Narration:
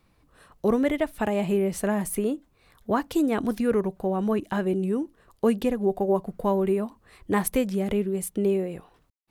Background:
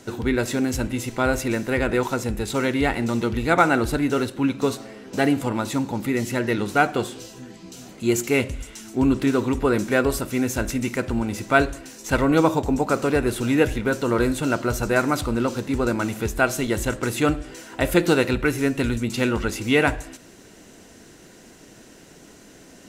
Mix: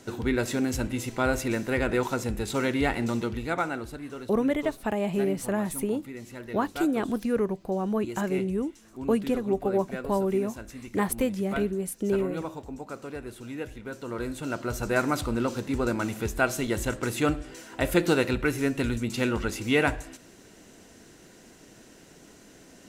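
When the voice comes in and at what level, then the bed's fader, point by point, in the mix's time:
3.65 s, -2.5 dB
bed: 3.09 s -4 dB
4.02 s -17 dB
13.72 s -17 dB
15 s -4.5 dB

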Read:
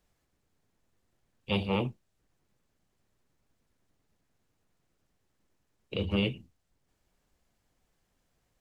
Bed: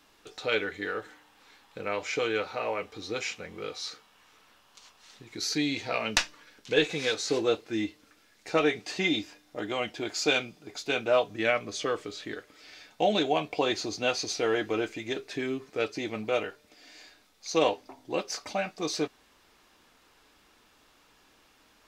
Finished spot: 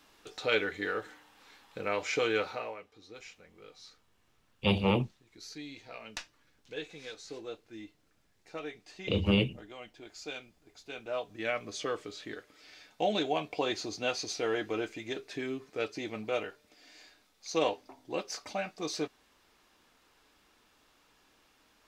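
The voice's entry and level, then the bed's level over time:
3.15 s, +2.5 dB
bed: 2.49 s -0.5 dB
2.84 s -16 dB
10.81 s -16 dB
11.69 s -4.5 dB

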